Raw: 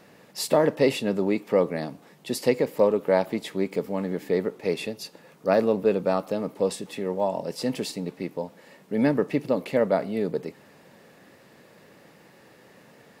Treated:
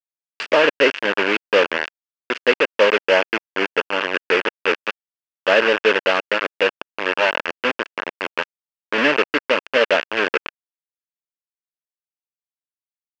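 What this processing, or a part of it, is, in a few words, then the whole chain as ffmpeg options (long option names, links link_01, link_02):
hand-held game console: -filter_complex "[0:a]acrusher=bits=3:mix=0:aa=0.000001,highpass=450,equalizer=frequency=750:width_type=q:width=4:gain=-8,equalizer=frequency=1600:width_type=q:width=4:gain=7,equalizer=frequency=2700:width_type=q:width=4:gain=9,equalizer=frequency=3900:width_type=q:width=4:gain=-9,lowpass=frequency=4200:width=0.5412,lowpass=frequency=4200:width=1.3066,asettb=1/sr,asplit=3[link_01][link_02][link_03];[link_01]atrim=end=3.084[link_04];[link_02]atrim=start=3.08:end=3.99,asetpts=PTS-STARTPTS,afade=type=in:duration=0.004:curve=qsin,afade=type=out:start_time=0.906:duration=0.004:curve=qsin,bandreject=frequency=3800:width=10[link_05];[link_03]atrim=start=3.986[link_06];[link_04][link_05]acrossfade=duration=0.004:curve1=hsin:curve2=qsin[link_07];[link_07][link_06]acrossfade=duration=0.004:curve1=qsin:curve2=hsin,volume=7.5dB"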